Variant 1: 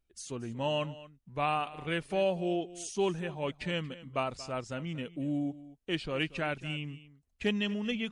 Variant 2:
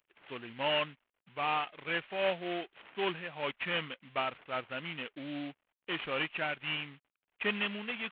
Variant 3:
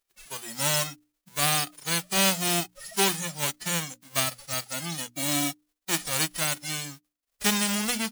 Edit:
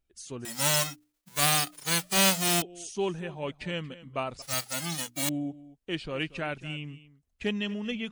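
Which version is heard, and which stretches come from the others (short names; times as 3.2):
1
0.45–2.62 from 3
4.42–5.29 from 3
not used: 2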